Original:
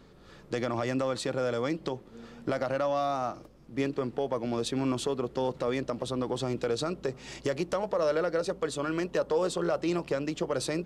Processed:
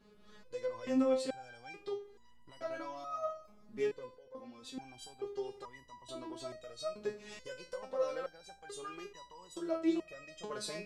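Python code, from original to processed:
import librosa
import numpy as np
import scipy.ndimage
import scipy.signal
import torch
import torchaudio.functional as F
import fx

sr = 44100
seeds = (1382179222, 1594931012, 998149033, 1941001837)

y = fx.echo_wet_lowpass(x, sr, ms=86, feedback_pct=52, hz=1600.0, wet_db=-18)
y = fx.level_steps(y, sr, step_db=20, at=(4.15, 4.78))
y = fx.resonator_held(y, sr, hz=2.3, low_hz=210.0, high_hz=980.0)
y = y * librosa.db_to_amplitude(5.5)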